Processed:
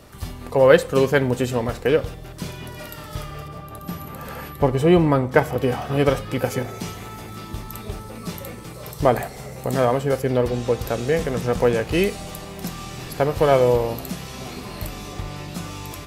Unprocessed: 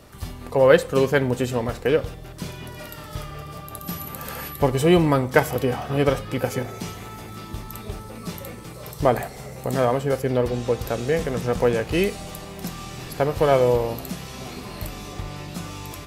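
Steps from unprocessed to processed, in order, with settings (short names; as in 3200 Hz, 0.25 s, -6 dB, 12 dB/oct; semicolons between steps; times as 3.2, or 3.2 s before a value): 3.48–5.63 high shelf 3000 Hz -10 dB; gain +1.5 dB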